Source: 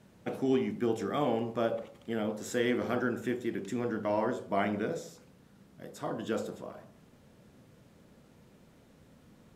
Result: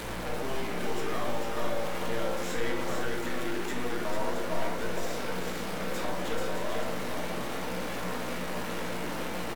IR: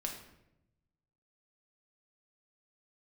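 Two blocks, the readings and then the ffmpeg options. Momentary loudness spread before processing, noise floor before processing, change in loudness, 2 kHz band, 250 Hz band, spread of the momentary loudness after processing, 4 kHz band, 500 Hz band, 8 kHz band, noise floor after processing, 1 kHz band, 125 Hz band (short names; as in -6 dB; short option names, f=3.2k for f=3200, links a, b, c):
11 LU, -60 dBFS, -1.0 dB, +6.0 dB, -2.0 dB, 2 LU, +8.5 dB, 0.0 dB, +8.5 dB, -33 dBFS, +4.0 dB, +2.5 dB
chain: -filter_complex "[0:a]aeval=exprs='val(0)+0.5*0.0266*sgn(val(0))':c=same,highpass=350,acrossover=split=670|3200[a][b][c];[a]acompressor=threshold=-43dB:ratio=4[d];[b]acompressor=threshold=-42dB:ratio=4[e];[c]acompressor=threshold=-51dB:ratio=4[f];[d][e][f]amix=inputs=3:normalize=0,aeval=exprs='clip(val(0),-1,0.00631)':c=same,aeval=exprs='val(0)+0.00355*(sin(2*PI*60*n/s)+sin(2*PI*2*60*n/s)/2+sin(2*PI*3*60*n/s)/3+sin(2*PI*4*60*n/s)/4+sin(2*PI*5*60*n/s)/5)':c=same,asplit=2[g][h];[h]adelay=17,volume=-10.5dB[i];[g][i]amix=inputs=2:normalize=0,aecho=1:1:446:0.596[j];[1:a]atrim=start_sample=2205,asetrate=36603,aresample=44100[k];[j][k]afir=irnorm=-1:irlink=0,volume=5.5dB"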